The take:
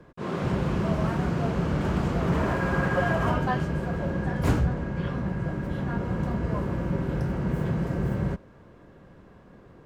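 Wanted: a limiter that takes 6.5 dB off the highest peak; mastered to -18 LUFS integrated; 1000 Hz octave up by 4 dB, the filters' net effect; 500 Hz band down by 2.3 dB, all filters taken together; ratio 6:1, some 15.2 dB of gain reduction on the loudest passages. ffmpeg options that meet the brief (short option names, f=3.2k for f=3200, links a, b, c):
-af "equalizer=f=500:t=o:g=-5,equalizer=f=1k:t=o:g=6.5,acompressor=threshold=-36dB:ratio=6,volume=22.5dB,alimiter=limit=-8.5dB:level=0:latency=1"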